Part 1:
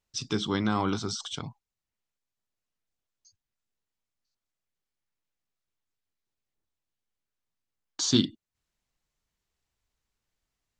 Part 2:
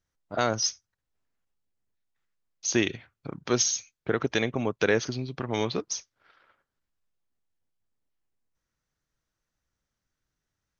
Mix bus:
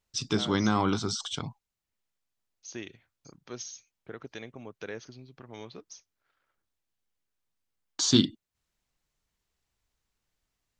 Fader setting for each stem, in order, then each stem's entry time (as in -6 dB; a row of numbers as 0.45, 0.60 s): +1.5, -16.0 dB; 0.00, 0.00 s